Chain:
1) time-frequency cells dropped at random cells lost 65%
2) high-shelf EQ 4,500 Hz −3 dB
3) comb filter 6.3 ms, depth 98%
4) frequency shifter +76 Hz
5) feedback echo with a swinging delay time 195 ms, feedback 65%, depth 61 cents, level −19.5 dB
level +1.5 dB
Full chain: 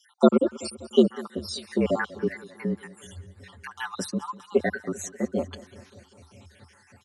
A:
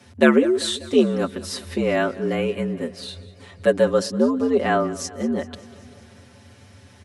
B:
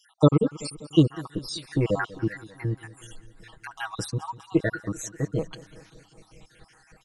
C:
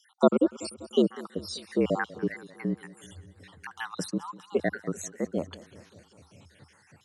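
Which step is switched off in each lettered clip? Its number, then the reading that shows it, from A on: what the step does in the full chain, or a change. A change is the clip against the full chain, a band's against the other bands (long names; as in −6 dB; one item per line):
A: 1, 4 kHz band +2.0 dB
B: 4, 125 Hz band +11.0 dB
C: 3, change in momentary loudness spread −2 LU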